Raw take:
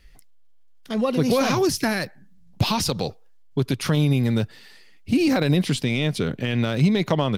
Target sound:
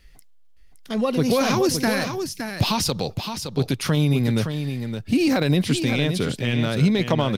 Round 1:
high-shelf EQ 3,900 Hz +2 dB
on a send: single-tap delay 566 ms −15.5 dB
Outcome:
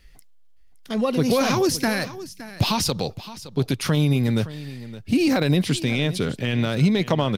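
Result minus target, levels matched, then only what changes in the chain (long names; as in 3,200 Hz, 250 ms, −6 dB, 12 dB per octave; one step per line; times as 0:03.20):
echo-to-direct −8 dB
change: single-tap delay 566 ms −7.5 dB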